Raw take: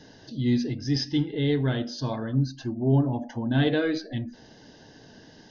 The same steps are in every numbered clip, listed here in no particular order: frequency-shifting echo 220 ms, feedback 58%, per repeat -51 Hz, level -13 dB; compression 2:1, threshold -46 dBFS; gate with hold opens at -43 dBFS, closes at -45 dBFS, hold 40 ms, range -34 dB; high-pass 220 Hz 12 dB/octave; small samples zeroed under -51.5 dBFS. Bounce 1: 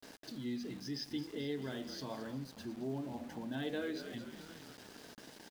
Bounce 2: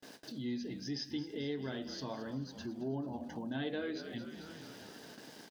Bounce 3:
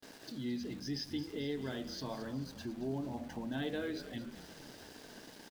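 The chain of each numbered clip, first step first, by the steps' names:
frequency-shifting echo > compression > high-pass > gate with hold > small samples zeroed; frequency-shifting echo > small samples zeroed > high-pass > compression > gate with hold; high-pass > compression > frequency-shifting echo > small samples zeroed > gate with hold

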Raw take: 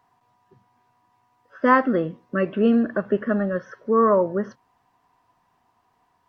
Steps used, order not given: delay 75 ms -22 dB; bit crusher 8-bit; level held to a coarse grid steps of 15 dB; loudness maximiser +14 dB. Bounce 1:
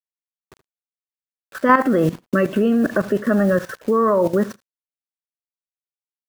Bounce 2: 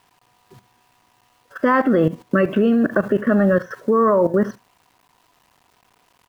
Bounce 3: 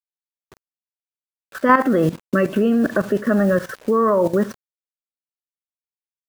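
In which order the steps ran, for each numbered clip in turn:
bit crusher > delay > level held to a coarse grid > loudness maximiser; loudness maximiser > bit crusher > level held to a coarse grid > delay; delay > bit crusher > level held to a coarse grid > loudness maximiser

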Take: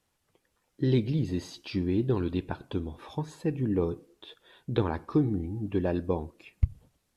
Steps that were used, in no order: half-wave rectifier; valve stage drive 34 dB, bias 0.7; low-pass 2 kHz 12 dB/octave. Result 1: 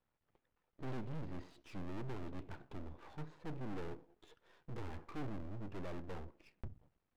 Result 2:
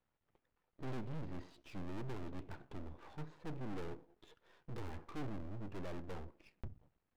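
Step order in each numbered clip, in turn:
valve stage > low-pass > half-wave rectifier; low-pass > valve stage > half-wave rectifier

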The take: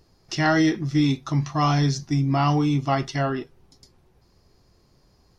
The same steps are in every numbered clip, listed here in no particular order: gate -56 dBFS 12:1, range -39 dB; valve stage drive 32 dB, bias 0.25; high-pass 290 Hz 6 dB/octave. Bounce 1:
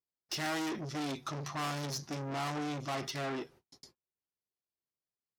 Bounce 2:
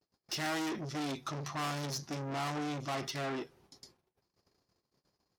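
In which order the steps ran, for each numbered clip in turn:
valve stage > high-pass > gate; valve stage > gate > high-pass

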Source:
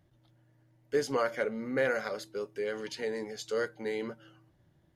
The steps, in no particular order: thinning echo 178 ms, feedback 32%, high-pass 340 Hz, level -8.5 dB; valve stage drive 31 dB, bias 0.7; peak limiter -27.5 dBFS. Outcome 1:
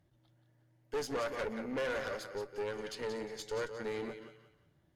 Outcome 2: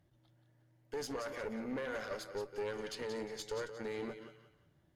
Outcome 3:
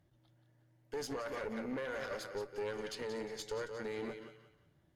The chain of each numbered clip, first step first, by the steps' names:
thinning echo > valve stage > peak limiter; peak limiter > thinning echo > valve stage; thinning echo > peak limiter > valve stage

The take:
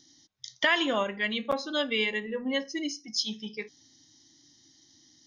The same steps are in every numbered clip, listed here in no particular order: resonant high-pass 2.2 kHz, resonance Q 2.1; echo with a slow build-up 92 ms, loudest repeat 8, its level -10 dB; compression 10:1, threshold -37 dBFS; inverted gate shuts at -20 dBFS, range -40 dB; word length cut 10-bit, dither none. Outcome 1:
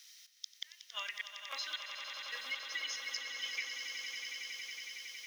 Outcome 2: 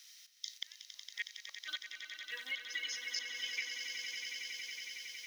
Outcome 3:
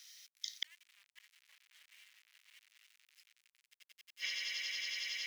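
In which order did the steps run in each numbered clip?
word length cut > resonant high-pass > inverted gate > compression > echo with a slow build-up; word length cut > inverted gate > resonant high-pass > compression > echo with a slow build-up; echo with a slow build-up > inverted gate > compression > word length cut > resonant high-pass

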